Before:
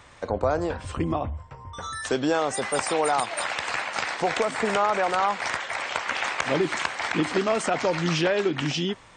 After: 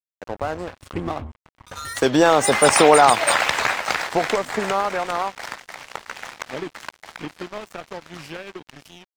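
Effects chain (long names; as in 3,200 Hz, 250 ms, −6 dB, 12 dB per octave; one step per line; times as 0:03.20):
source passing by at 0:02.91, 14 m/s, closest 6.9 metres
dead-zone distortion −45.5 dBFS
boost into a limiter +15 dB
wow of a warped record 78 rpm, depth 100 cents
level −1 dB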